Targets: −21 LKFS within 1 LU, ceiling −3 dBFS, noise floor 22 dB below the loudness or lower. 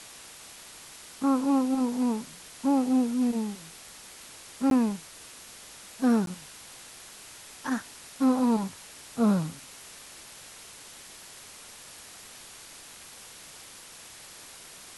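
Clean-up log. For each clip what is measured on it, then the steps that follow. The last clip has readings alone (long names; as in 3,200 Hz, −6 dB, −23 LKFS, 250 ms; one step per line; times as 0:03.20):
number of dropouts 2; longest dropout 12 ms; background noise floor −48 dBFS; target noise floor −50 dBFS; integrated loudness −27.5 LKFS; sample peak −14.5 dBFS; target loudness −21.0 LKFS
→ repair the gap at 0:04.70/0:06.26, 12 ms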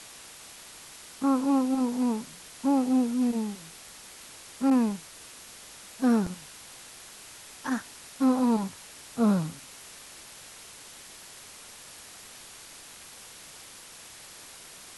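number of dropouts 0; background noise floor −48 dBFS; target noise floor −49 dBFS
→ broadband denoise 6 dB, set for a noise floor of −48 dBFS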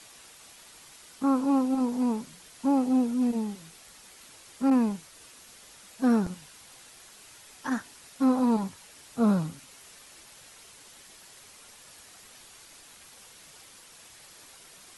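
background noise floor −52 dBFS; integrated loudness −27.0 LKFS; sample peak −14.5 dBFS; target loudness −21.0 LKFS
→ level +6 dB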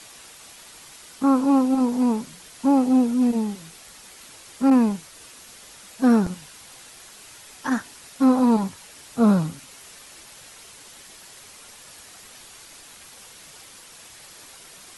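integrated loudness −21.0 LKFS; sample peak −8.5 dBFS; background noise floor −46 dBFS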